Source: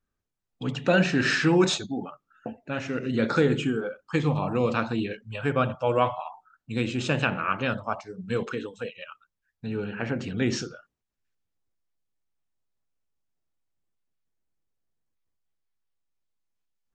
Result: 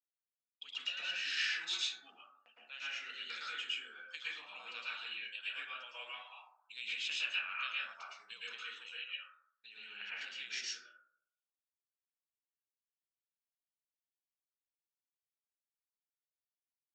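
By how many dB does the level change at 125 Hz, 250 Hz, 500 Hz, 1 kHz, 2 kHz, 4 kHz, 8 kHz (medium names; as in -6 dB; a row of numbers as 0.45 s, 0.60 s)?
under -40 dB, under -40 dB, -36.0 dB, -20.0 dB, -9.0 dB, -3.0 dB, -9.5 dB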